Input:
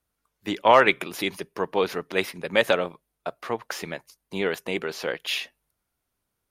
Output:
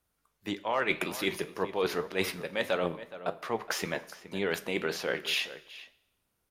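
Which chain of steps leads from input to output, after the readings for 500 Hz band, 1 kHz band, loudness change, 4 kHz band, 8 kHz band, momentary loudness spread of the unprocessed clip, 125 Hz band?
-7.0 dB, -11.0 dB, -7.5 dB, -4.0 dB, -1.0 dB, 19 LU, -3.0 dB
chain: reverse; compression 8:1, threshold -27 dBFS, peak gain reduction 16.5 dB; reverse; flange 1.8 Hz, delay 9.7 ms, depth 5.2 ms, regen +71%; echo from a far wall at 72 m, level -14 dB; Schroeder reverb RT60 0.89 s, combs from 28 ms, DRR 17.5 dB; trim +5.5 dB

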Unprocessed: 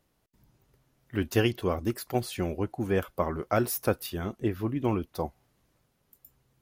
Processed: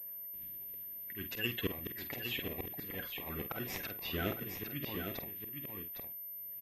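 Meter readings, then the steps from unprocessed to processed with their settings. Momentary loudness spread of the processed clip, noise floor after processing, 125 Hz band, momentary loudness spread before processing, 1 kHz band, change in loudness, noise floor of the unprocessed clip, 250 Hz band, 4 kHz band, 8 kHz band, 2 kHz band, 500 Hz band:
6 LU, -46 dBFS, -13.0 dB, 8 LU, -14.0 dB, -9.5 dB, -73 dBFS, -13.0 dB, -1.5 dB, -13.5 dB, -3.5 dB, -14.5 dB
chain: coarse spectral quantiser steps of 30 dB; treble shelf 3.9 kHz +5.5 dB; slow attack 461 ms; whistle 520 Hz -69 dBFS; in parallel at -11 dB: sample-and-hold 29×; on the sum: high-order bell 2.4 kHz +13 dB 1.3 oct; doubling 49 ms -9.5 dB; delay 809 ms -6.5 dB; class-D stage that switches slowly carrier 13 kHz; trim -2.5 dB

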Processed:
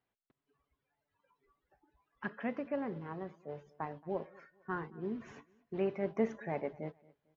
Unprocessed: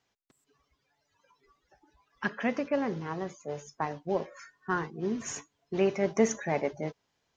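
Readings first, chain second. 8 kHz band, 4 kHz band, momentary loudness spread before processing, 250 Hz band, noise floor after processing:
under -30 dB, under -10 dB, 12 LU, -7.0 dB, under -85 dBFS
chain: distance through air 370 m; feedback delay 225 ms, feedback 34%, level -23.5 dB; trim -6.5 dB

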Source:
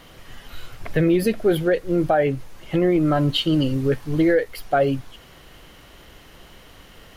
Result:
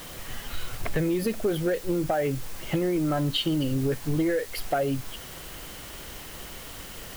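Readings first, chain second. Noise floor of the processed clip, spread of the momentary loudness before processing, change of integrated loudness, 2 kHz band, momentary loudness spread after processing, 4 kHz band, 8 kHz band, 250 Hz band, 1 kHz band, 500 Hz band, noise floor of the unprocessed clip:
-41 dBFS, 7 LU, -7.0 dB, -6.0 dB, 14 LU, -3.5 dB, no reading, -6.5 dB, -6.5 dB, -7.0 dB, -47 dBFS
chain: compression 8:1, threshold -25 dBFS, peak gain reduction 12 dB; word length cut 8-bit, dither triangular; saturation -18.5 dBFS, distortion -23 dB; trim +3.5 dB

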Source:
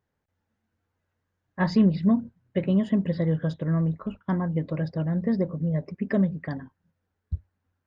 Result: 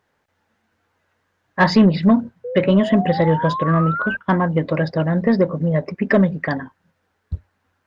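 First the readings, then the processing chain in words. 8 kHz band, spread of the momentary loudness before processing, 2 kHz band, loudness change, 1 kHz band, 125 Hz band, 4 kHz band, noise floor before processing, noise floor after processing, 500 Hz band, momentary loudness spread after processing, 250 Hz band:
no reading, 15 LU, +16.0 dB, +8.0 dB, +16.5 dB, +6.0 dB, +14.0 dB, -80 dBFS, -70 dBFS, +12.0 dB, 12 LU, +6.5 dB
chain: painted sound rise, 2.44–4.17 s, 480–1600 Hz -40 dBFS; overdrive pedal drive 14 dB, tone 4.1 kHz, clips at -10.5 dBFS; trim +8 dB

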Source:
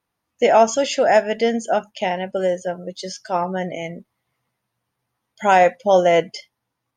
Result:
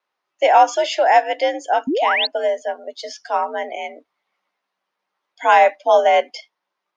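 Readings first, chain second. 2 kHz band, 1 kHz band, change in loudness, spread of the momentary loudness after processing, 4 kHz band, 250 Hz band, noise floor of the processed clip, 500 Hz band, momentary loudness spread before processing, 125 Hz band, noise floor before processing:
+3.5 dB, +4.0 dB, +1.5 dB, 17 LU, +4.5 dB, -6.0 dB, -80 dBFS, -0.5 dB, 16 LU, under -25 dB, -79 dBFS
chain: three-band isolator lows -21 dB, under 340 Hz, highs -21 dB, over 6 kHz; frequency shift +68 Hz; painted sound rise, 1.87–2.27 s, 230–4600 Hz -21 dBFS; trim +2 dB

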